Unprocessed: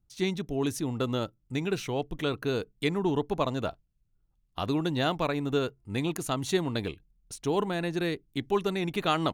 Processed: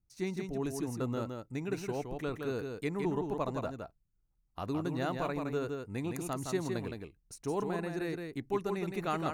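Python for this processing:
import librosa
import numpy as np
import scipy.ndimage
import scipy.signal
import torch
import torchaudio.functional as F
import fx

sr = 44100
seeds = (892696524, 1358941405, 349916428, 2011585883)

y = fx.peak_eq(x, sr, hz=3300.0, db=-13.5, octaves=0.46)
y = y + 10.0 ** (-5.0 / 20.0) * np.pad(y, (int(165 * sr / 1000.0), 0))[:len(y)]
y = y * 10.0 ** (-6.5 / 20.0)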